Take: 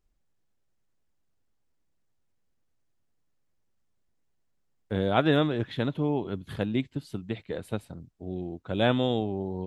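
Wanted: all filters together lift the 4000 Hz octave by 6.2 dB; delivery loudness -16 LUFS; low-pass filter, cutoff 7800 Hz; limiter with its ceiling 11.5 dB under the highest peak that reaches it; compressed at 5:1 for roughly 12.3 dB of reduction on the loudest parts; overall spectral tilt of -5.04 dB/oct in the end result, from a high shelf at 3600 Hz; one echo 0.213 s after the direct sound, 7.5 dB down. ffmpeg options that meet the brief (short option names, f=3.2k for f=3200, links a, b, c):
-af "lowpass=7.8k,highshelf=f=3.6k:g=8,equalizer=f=4k:t=o:g=3,acompressor=threshold=-31dB:ratio=5,alimiter=level_in=6dB:limit=-24dB:level=0:latency=1,volume=-6dB,aecho=1:1:213:0.422,volume=25dB"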